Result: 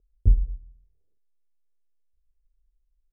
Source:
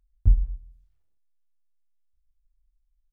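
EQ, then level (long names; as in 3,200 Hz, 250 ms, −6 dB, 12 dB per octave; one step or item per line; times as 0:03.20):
low-pass with resonance 440 Hz, resonance Q 3.6
0.0 dB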